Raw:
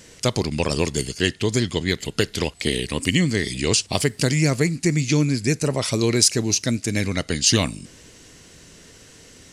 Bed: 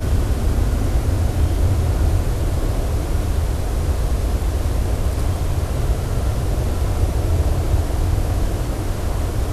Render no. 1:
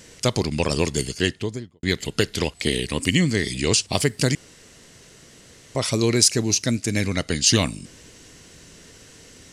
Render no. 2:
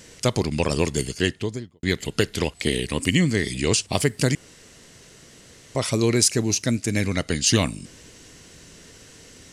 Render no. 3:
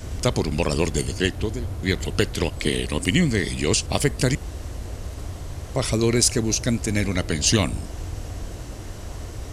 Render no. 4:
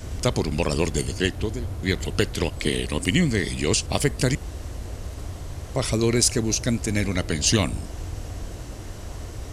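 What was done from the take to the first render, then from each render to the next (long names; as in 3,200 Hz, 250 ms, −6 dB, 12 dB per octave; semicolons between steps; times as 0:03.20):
0:01.15–0:01.83: fade out and dull; 0:04.35–0:05.75: fill with room tone
dynamic equaliser 4,700 Hz, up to −4 dB, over −36 dBFS, Q 1.2
mix in bed −13 dB
level −1 dB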